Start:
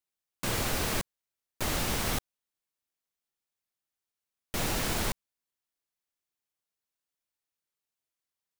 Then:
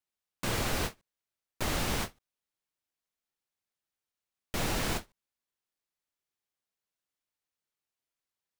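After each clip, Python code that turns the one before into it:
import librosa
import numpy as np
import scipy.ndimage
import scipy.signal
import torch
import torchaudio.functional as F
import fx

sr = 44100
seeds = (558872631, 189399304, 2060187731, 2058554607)

y = fx.high_shelf(x, sr, hz=7300.0, db=-5.5)
y = fx.end_taper(y, sr, db_per_s=370.0)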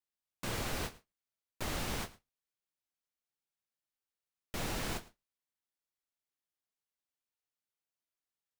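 y = x + 10.0 ** (-20.5 / 20.0) * np.pad(x, (int(108 * sr / 1000.0), 0))[:len(x)]
y = y * 10.0 ** (-6.0 / 20.0)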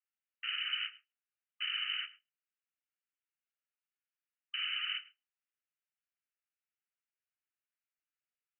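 y = fx.freq_invert(x, sr, carrier_hz=3000)
y = fx.brickwall_highpass(y, sr, low_hz=1200.0)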